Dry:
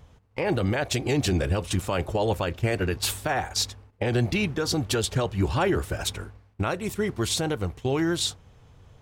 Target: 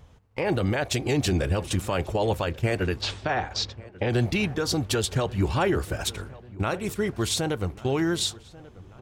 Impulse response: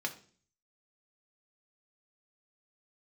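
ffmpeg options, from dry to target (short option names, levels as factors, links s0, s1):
-filter_complex "[0:a]asettb=1/sr,asplit=3[s0][s1][s2];[s0]atrim=end=3.014[s3];[s1]atrim=start=3.01:end=4.1,asetpts=PTS-STARTPTS,afade=t=in:d=0.004:c=qsin,afade=t=out:st=1.086:d=0.004:c=qsin,lowpass=f=5200:w=0.5412,lowpass=f=5200:w=1.3066[s4];[s2]atrim=start=4.096[s5];[s3][s4]acrossfade=d=0.004:c1=hsin:c2=qsin[s6];[s6][s5]acrossfade=d=0.004:c1=qsin:c2=hsin,asplit=2[s7][s8];[s8]adelay=1139,lowpass=f=2400:p=1,volume=0.1,asplit=2[s9][s10];[s10]adelay=1139,lowpass=f=2400:p=1,volume=0.54,asplit=2[s11][s12];[s12]adelay=1139,lowpass=f=2400:p=1,volume=0.54,asplit=2[s13][s14];[s14]adelay=1139,lowpass=f=2400:p=1,volume=0.54[s15];[s7][s9][s11][s13][s15]amix=inputs=5:normalize=0"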